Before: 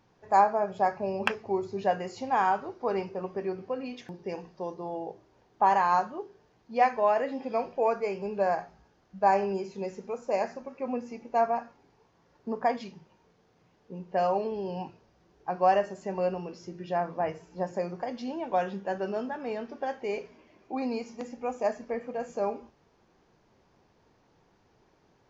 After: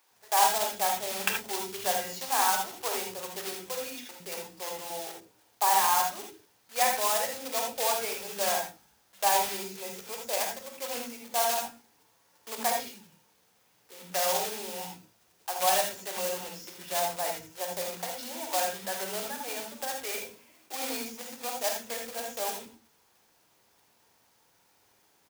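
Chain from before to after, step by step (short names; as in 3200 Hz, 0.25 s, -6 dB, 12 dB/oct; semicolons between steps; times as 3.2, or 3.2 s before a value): block floating point 3-bit; tilt +3 dB/oct; in parallel at -7 dB: wavefolder -14 dBFS; on the sum: bands offset in time highs, lows 0.11 s, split 330 Hz; non-linear reverb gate 0.1 s rising, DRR 2.5 dB; gain -6.5 dB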